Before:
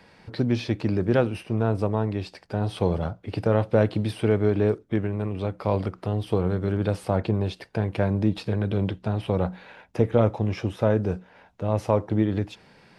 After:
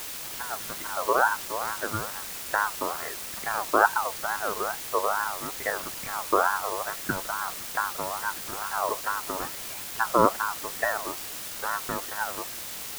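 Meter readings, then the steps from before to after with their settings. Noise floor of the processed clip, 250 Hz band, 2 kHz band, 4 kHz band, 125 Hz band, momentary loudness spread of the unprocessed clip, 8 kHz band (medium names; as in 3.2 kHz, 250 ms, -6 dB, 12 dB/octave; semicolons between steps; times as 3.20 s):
-37 dBFS, -13.5 dB, +10.0 dB, +5.0 dB, -22.0 dB, 8 LU, no reading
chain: phaser 0.78 Hz, delay 1.6 ms, feedback 69%; auto-wah 300–2000 Hz, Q 2.1, down, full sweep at -17 dBFS; word length cut 6-bit, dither triangular; ring modulator with a swept carrier 1 kHz, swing 25%, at 2.3 Hz; trim +2 dB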